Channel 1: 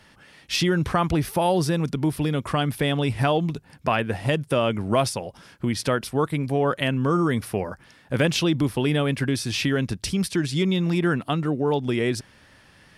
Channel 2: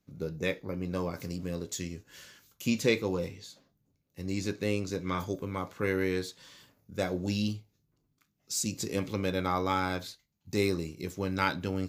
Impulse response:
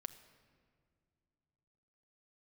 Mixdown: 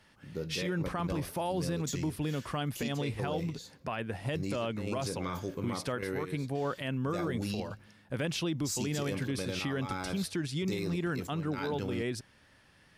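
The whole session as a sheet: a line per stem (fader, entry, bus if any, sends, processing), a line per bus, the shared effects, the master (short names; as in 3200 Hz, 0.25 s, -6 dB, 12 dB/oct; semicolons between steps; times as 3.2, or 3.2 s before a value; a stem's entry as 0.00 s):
-9.0 dB, 0.00 s, no send, dry
-2.5 dB, 0.15 s, send -10 dB, step gate "xxxxxxx.xx...xxx" 143 bpm -12 dB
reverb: on, pre-delay 6 ms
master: limiter -24.5 dBFS, peak gain reduction 11.5 dB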